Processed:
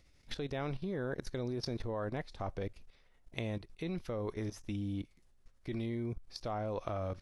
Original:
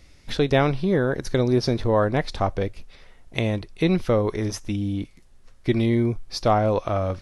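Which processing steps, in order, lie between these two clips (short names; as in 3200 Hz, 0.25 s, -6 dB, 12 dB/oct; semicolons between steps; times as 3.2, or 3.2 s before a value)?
level quantiser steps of 14 dB; gain -8.5 dB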